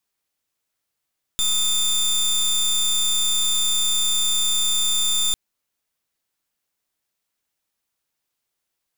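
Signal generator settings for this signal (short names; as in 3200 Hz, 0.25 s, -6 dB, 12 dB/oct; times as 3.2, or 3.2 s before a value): pulse 3570 Hz, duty 23% -20 dBFS 3.95 s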